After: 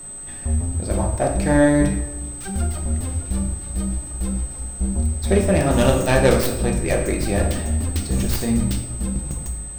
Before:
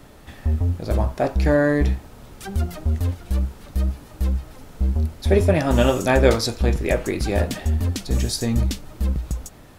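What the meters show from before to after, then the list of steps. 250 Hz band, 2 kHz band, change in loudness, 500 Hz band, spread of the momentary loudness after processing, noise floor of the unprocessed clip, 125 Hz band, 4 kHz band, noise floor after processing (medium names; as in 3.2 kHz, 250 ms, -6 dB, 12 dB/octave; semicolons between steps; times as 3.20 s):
+3.0 dB, +0.5 dB, +1.0 dB, +0.5 dB, 10 LU, -45 dBFS, -0.5 dB, -1.5 dB, -33 dBFS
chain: tracing distortion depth 0.21 ms; whistle 8.2 kHz -35 dBFS; simulated room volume 330 m³, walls mixed, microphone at 0.85 m; trim -1.5 dB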